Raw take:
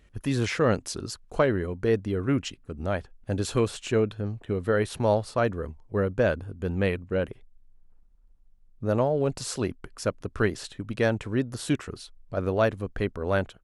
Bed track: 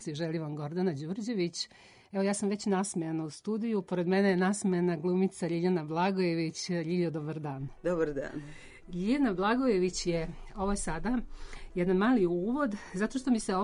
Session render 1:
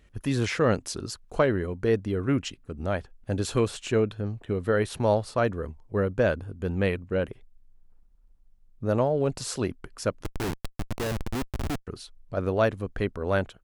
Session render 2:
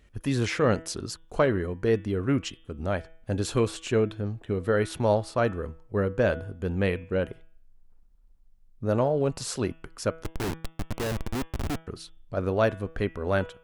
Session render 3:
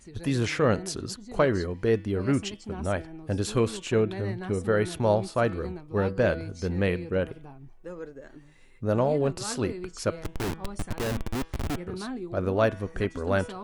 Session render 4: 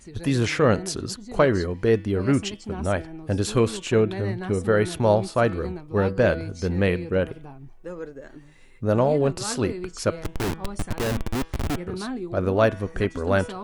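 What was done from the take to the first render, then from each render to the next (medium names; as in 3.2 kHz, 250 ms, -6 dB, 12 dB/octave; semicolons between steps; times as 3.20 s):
10.24–11.87 s: Schmitt trigger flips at -28.5 dBFS
de-hum 162.7 Hz, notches 22
add bed track -9.5 dB
trim +4 dB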